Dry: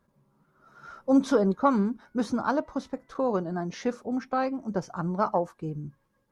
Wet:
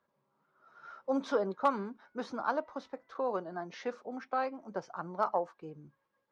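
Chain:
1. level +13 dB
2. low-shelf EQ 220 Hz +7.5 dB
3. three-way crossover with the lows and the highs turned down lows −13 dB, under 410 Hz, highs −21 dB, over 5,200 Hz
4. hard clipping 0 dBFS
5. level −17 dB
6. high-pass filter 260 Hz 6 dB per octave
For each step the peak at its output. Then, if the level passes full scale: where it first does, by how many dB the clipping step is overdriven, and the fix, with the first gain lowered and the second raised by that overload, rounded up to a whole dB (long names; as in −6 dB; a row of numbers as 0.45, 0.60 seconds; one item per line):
+3.0, +4.5, +4.0, 0.0, −17.0, −15.5 dBFS
step 1, 4.0 dB
step 1 +9 dB, step 5 −13 dB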